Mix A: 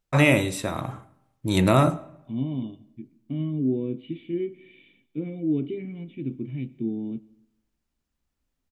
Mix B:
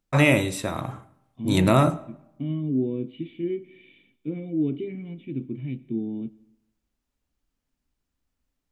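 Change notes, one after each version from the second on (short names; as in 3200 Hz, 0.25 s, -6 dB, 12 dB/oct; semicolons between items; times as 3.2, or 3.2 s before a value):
second voice: entry -0.90 s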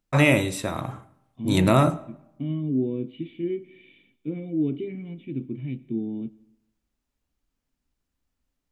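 none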